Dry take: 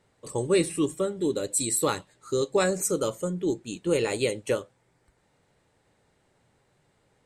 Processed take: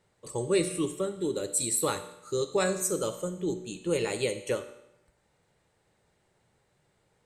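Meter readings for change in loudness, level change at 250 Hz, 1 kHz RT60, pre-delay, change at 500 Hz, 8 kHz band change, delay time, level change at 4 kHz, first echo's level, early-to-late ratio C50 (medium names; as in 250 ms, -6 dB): -3.0 dB, -4.0 dB, 0.85 s, 40 ms, -3.0 dB, -1.5 dB, no echo, -2.5 dB, no echo, 11.5 dB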